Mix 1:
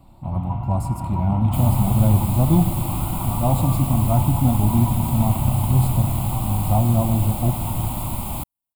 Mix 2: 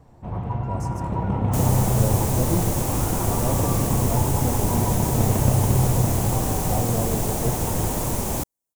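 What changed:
speech -11.5 dB; master: remove static phaser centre 1.7 kHz, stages 6

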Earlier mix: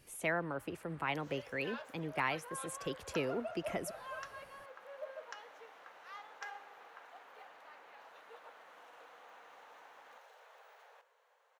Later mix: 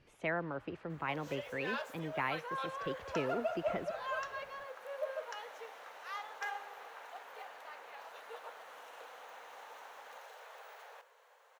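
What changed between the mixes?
speech: add distance through air 220 m; second sound +7.0 dB; master: add treble shelf 7.4 kHz +5 dB

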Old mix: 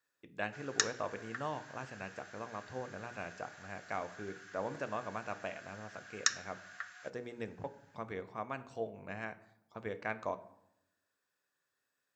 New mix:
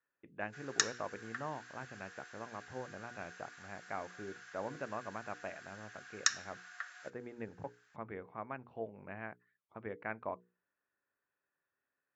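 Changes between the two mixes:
speech: add low-pass 2.4 kHz 24 dB/octave; reverb: off

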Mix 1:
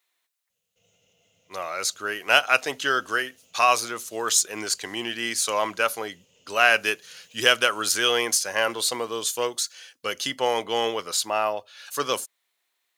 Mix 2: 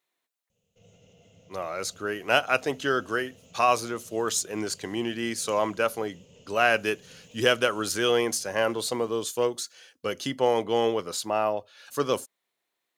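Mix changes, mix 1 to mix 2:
background +8.5 dB; master: add tilt shelf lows +7.5 dB, about 660 Hz

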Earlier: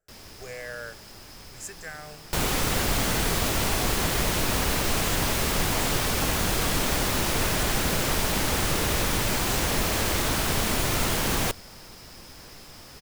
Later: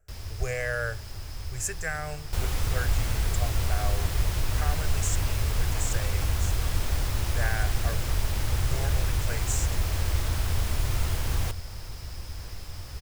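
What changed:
speech +7.5 dB; second sound -10.0 dB; master: add resonant low shelf 130 Hz +13.5 dB, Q 1.5

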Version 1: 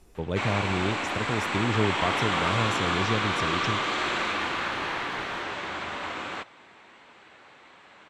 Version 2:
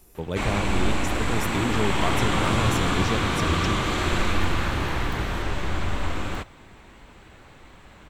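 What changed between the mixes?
background: remove frequency weighting A; master: remove distance through air 67 m

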